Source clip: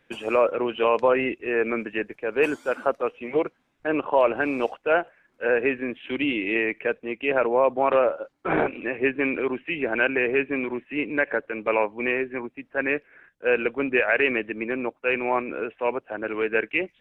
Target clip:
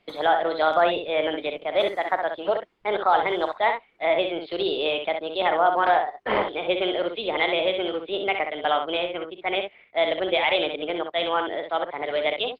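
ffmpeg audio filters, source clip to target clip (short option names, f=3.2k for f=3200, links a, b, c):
-af "asetrate=59535,aresample=44100,lowpass=f=2.8k:p=1,aecho=1:1:39|64:0.178|0.473"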